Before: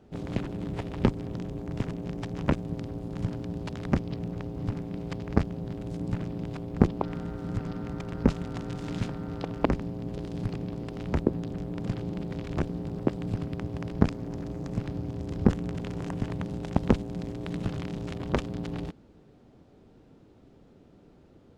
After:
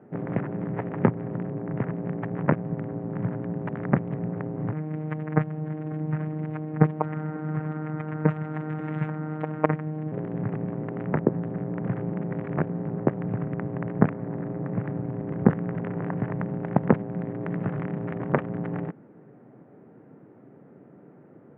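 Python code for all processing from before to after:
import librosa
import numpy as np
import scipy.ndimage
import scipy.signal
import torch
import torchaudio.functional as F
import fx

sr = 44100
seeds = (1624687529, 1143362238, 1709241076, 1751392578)

y = fx.chain(x, sr, fx.high_shelf(hz=3000.0, db=9.0),
    fx.robotise(hz=154.0),
    fx.echo_single(ms=542, db=-20.5), at=(4.72, 10.12))
y = scipy.signal.sosfilt(scipy.signal.ellip(3, 1.0, 40, [130.0, 1900.0], 'bandpass', fs=sr, output='sos'), y)
y = fx.dynamic_eq(y, sr, hz=290.0, q=1.5, threshold_db=-39.0, ratio=4.0, max_db=-5)
y = F.gain(torch.from_numpy(y), 6.5).numpy()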